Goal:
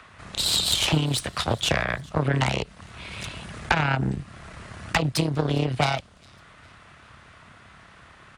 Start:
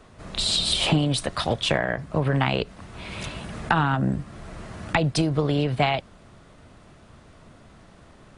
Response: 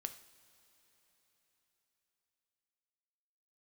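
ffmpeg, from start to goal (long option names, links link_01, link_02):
-filter_complex "[0:a]aeval=exprs='0.501*(cos(1*acos(clip(val(0)/0.501,-1,1)))-cos(1*PI/2))+0.178*(cos(4*acos(clip(val(0)/0.501,-1,1)))-cos(4*PI/2))':channel_layout=same,highpass=51,lowshelf=frequency=220:gain=-7.5,acrossover=split=150|1100|2900[link_01][link_02][link_03][link_04];[link_01]acontrast=49[link_05];[link_02]tremolo=f=35:d=0.974[link_06];[link_03]acompressor=mode=upward:threshold=-42dB:ratio=2.5[link_07];[link_04]aecho=1:1:407|814|1221:0.075|0.033|0.0145[link_08];[link_05][link_06][link_07][link_08]amix=inputs=4:normalize=0"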